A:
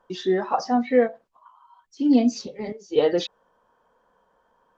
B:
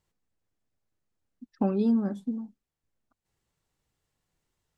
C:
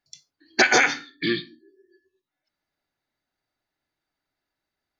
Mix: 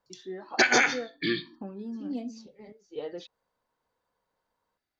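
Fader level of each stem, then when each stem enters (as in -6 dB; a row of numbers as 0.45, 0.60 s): -17.0, -14.0, -4.0 dB; 0.00, 0.00, 0.00 s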